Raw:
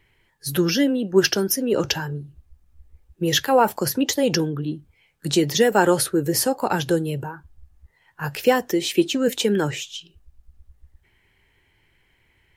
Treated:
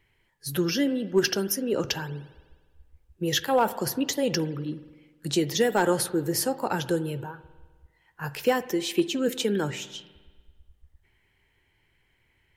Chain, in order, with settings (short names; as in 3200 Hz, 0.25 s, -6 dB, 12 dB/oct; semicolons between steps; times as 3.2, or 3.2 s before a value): spring tank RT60 1.4 s, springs 50 ms, chirp 40 ms, DRR 15 dB; overloaded stage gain 7.5 dB; gain -5.5 dB